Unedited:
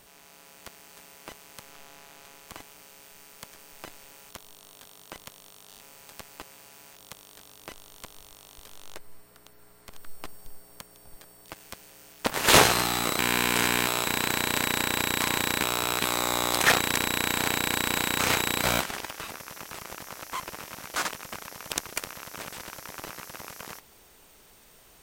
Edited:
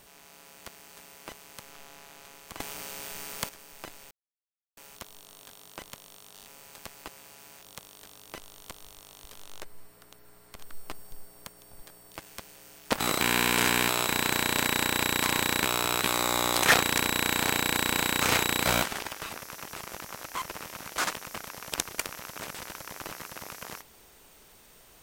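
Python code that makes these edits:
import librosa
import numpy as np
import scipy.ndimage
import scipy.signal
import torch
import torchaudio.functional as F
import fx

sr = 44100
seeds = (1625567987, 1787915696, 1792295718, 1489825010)

y = fx.edit(x, sr, fx.clip_gain(start_s=2.6, length_s=0.89, db=11.0),
    fx.insert_silence(at_s=4.11, length_s=0.66),
    fx.cut(start_s=12.34, length_s=0.64), tone=tone)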